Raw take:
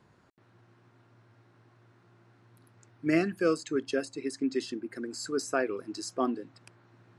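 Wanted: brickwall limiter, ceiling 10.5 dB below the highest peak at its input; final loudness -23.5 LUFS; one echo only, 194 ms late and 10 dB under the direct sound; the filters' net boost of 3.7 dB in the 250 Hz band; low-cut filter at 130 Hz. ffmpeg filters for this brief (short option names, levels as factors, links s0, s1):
-af "highpass=130,equalizer=f=250:t=o:g=5,alimiter=limit=0.075:level=0:latency=1,aecho=1:1:194:0.316,volume=3.16"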